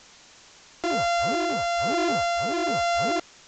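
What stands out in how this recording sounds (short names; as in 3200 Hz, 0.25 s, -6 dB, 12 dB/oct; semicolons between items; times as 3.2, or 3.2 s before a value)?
a buzz of ramps at a fixed pitch in blocks of 64 samples; tremolo triangle 1.1 Hz, depth 30%; a quantiser's noise floor 8-bit, dither triangular; µ-law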